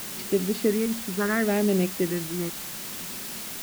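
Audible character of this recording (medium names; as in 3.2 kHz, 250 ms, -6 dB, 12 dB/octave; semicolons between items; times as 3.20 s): phasing stages 4, 0.72 Hz, lowest notch 530–1400 Hz; a quantiser's noise floor 6-bit, dither triangular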